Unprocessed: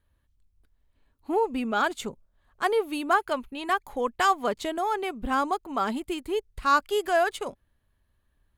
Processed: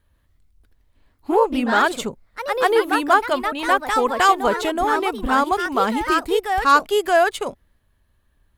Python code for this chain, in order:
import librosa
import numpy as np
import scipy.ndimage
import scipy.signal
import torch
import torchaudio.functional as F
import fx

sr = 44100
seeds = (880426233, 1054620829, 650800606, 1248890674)

y = fx.echo_pitch(x, sr, ms=148, semitones=2, count=2, db_per_echo=-6.0)
y = y * 10.0 ** (7.0 / 20.0)